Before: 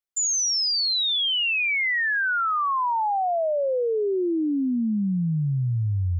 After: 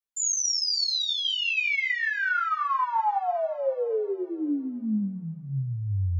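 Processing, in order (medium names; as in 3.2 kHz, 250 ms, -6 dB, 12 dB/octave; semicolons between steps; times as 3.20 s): thinning echo 280 ms, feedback 61%, high-pass 440 Hz, level -18.5 dB; three-phase chorus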